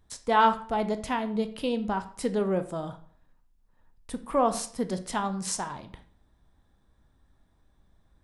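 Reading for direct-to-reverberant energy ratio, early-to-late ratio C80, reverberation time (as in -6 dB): 8.5 dB, 17.5 dB, 0.55 s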